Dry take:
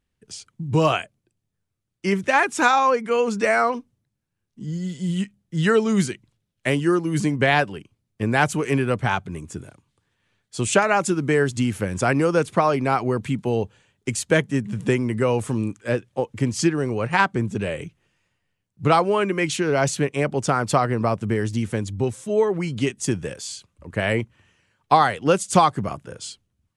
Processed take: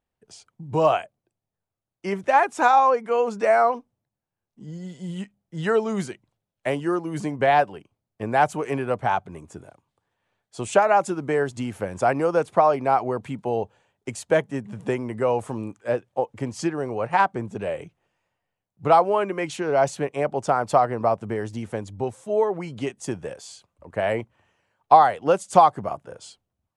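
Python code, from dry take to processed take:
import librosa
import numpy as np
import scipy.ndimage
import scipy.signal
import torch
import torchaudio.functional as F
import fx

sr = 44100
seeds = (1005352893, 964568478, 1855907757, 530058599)

y = fx.peak_eq(x, sr, hz=730.0, db=14.0, octaves=1.5)
y = F.gain(torch.from_numpy(y), -9.5).numpy()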